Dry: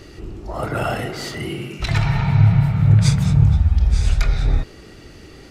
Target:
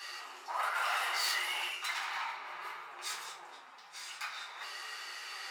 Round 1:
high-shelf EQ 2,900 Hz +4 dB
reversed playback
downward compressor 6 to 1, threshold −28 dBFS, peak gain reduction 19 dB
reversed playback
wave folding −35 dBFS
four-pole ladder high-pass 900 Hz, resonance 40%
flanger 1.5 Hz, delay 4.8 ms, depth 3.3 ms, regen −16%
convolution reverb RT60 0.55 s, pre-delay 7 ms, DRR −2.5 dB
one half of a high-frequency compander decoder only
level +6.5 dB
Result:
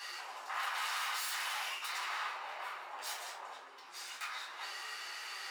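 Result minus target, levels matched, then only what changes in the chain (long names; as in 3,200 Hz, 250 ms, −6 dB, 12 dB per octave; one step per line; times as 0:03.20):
wave folding: distortion +27 dB
change: wave folding −28 dBFS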